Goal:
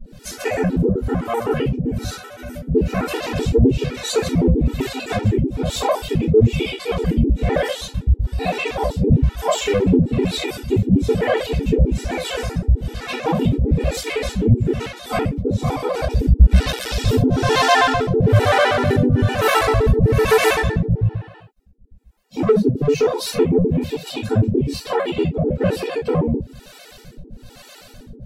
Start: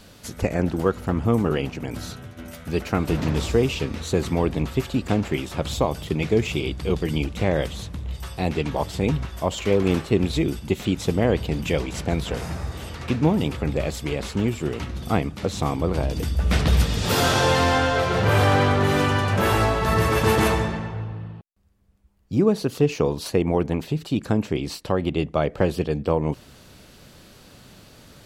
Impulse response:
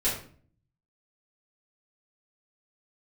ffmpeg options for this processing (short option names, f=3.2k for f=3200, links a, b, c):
-filter_complex "[1:a]atrim=start_sample=2205,afade=t=out:st=0.15:d=0.01,atrim=end_sample=7056[a];[0:a][a]afir=irnorm=-1:irlink=0,aeval=exprs='(tanh(0.794*val(0)+0.1)-tanh(0.1))/0.794':c=same,acontrast=33,acrossover=split=450[b][c];[b]aeval=exprs='val(0)*(1-1/2+1/2*cos(2*PI*1.1*n/s))':c=same[d];[c]aeval=exprs='val(0)*(1-1/2-1/2*cos(2*PI*1.1*n/s))':c=same[e];[d][e]amix=inputs=2:normalize=0,afftfilt=real='re*gt(sin(2*PI*7.8*pts/sr)*(1-2*mod(floor(b*sr/1024/250),2)),0)':imag='im*gt(sin(2*PI*7.8*pts/sr)*(1-2*mod(floor(b*sr/1024/250),2)),0)':win_size=1024:overlap=0.75,volume=-1dB"